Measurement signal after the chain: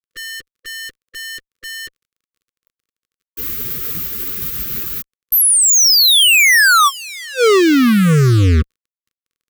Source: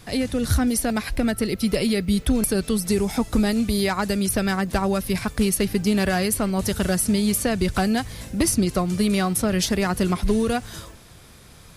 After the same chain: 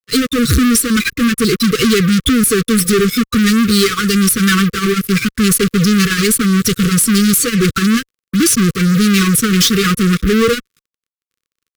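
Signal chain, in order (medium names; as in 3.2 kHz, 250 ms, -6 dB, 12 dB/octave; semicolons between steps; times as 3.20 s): expander on every frequency bin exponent 2; high-pass 130 Hz 12 dB/octave; dynamic bell 3.3 kHz, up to +4 dB, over -50 dBFS, Q 4.4; fuzz box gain 53 dB, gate -48 dBFS; crackle 30 per s -29 dBFS; brick-wall FIR band-stop 510–1100 Hz; upward expansion 2.5:1, over -30 dBFS; trim +4 dB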